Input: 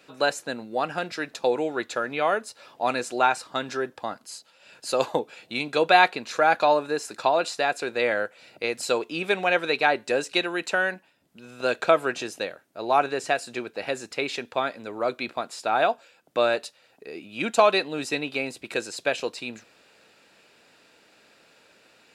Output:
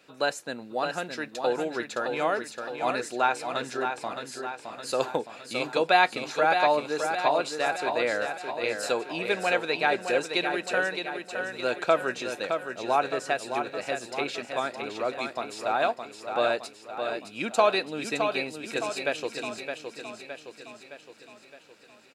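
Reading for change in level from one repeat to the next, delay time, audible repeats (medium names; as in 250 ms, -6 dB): -5.5 dB, 615 ms, 6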